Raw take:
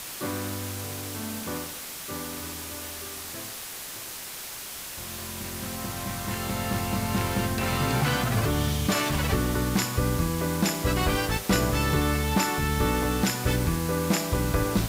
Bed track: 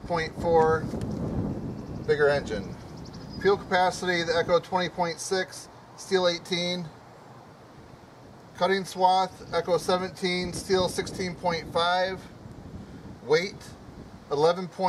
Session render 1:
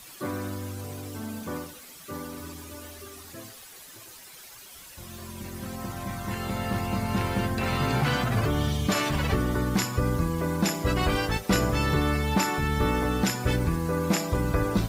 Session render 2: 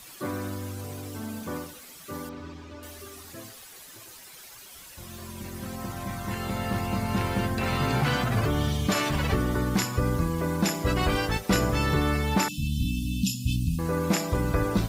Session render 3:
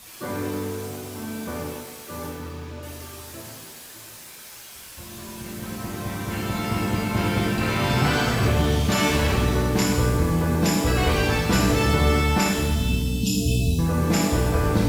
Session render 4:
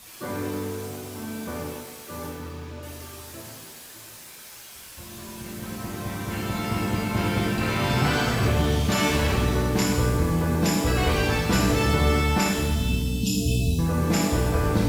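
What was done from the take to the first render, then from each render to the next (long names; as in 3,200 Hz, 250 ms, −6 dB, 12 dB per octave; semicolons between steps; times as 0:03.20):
broadband denoise 12 dB, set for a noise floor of −38 dBFS
0:02.29–0:02.83: high-frequency loss of the air 170 metres; 0:12.48–0:13.79: linear-phase brick-wall band-stop 290–2,500 Hz
reverb with rising layers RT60 1.2 s, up +7 semitones, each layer −8 dB, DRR −2 dB
level −1.5 dB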